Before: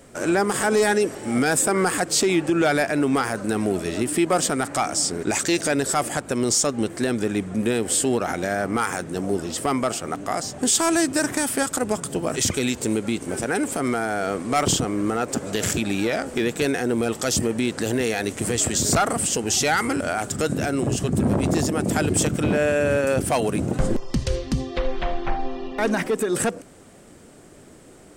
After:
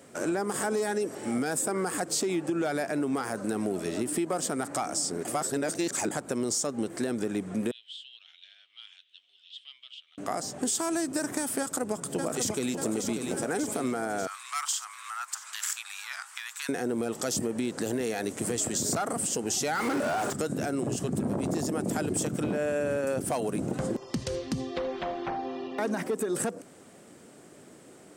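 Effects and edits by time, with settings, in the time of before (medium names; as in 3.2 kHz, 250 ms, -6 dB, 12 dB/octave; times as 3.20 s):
5.25–6.11 s: reverse
7.71–10.18 s: Butterworth band-pass 3.3 kHz, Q 4.1
11.59–12.74 s: echo throw 590 ms, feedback 65%, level -6.5 dB
14.27–16.69 s: steep high-pass 1 kHz 48 dB/octave
19.75–20.33 s: overdrive pedal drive 34 dB, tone 2.1 kHz, clips at -13 dBFS
whole clip: high-pass 140 Hz 12 dB/octave; dynamic bell 2.6 kHz, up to -6 dB, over -38 dBFS, Q 0.77; compression, threshold -22 dBFS; trim -3.5 dB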